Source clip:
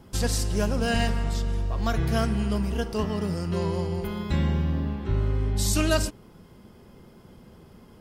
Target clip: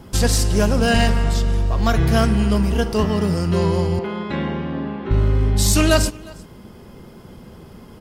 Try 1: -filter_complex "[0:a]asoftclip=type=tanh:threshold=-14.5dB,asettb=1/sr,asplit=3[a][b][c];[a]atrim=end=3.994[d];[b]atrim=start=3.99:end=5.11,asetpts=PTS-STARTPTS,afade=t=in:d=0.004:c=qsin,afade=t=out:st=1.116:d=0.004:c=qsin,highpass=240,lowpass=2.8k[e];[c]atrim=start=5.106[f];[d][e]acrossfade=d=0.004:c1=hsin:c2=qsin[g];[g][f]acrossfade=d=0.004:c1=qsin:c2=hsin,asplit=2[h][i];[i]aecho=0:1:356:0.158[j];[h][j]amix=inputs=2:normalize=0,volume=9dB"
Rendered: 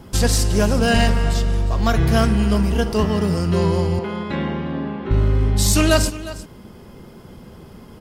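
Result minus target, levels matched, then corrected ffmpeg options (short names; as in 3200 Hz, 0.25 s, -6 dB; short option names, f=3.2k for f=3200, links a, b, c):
echo-to-direct +8 dB
-filter_complex "[0:a]asoftclip=type=tanh:threshold=-14.5dB,asettb=1/sr,asplit=3[a][b][c];[a]atrim=end=3.994[d];[b]atrim=start=3.99:end=5.11,asetpts=PTS-STARTPTS,afade=t=in:d=0.004:c=qsin,afade=t=out:st=1.116:d=0.004:c=qsin,highpass=240,lowpass=2.8k[e];[c]atrim=start=5.106[f];[d][e]acrossfade=d=0.004:c1=hsin:c2=qsin[g];[g][f]acrossfade=d=0.004:c1=qsin:c2=hsin,asplit=2[h][i];[i]aecho=0:1:356:0.0631[j];[h][j]amix=inputs=2:normalize=0,volume=9dB"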